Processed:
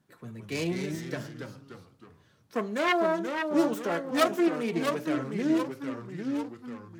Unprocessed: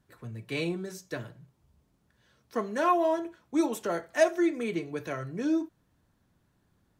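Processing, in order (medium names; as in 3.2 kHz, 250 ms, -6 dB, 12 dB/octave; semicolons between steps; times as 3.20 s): self-modulated delay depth 0.4 ms; resonant low shelf 110 Hz -12 dB, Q 1.5; ever faster or slower copies 143 ms, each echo -2 st, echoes 3, each echo -6 dB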